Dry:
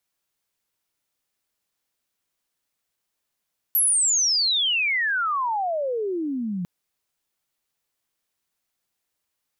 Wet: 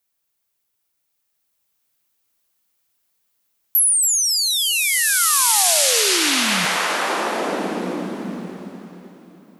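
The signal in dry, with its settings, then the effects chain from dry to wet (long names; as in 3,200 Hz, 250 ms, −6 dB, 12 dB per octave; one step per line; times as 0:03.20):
glide logarithmic 12,000 Hz → 170 Hz −16.5 dBFS → −25 dBFS 2.90 s
high-shelf EQ 11,000 Hz +9.5 dB
on a send: echo with a time of its own for lows and highs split 990 Hz, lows 108 ms, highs 277 ms, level −11 dB
on the sum: slow-attack reverb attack 1,750 ms, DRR −2 dB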